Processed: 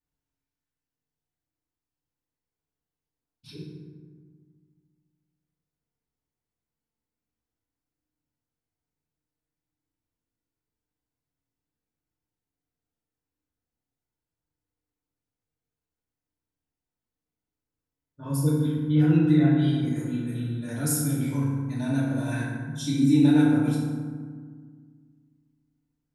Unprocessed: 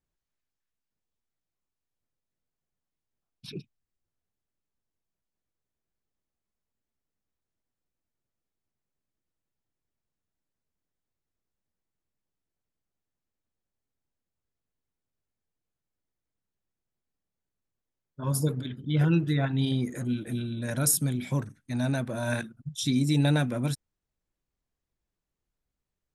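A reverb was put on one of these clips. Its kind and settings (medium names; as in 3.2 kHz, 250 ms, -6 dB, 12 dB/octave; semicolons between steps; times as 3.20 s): FDN reverb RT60 1.7 s, low-frequency decay 1.45×, high-frequency decay 0.45×, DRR -8 dB; trim -9.5 dB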